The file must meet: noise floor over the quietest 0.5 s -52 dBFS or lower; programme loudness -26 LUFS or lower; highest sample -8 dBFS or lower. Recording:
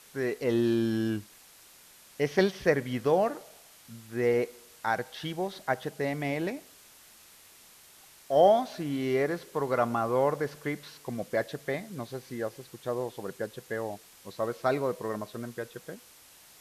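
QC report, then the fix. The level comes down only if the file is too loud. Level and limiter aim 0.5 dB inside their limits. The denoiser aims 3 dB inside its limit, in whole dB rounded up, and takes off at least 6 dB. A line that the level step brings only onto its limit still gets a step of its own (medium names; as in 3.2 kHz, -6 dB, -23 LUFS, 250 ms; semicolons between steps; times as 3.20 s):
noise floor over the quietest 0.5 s -55 dBFS: pass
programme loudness -30.0 LUFS: pass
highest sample -9.5 dBFS: pass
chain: none needed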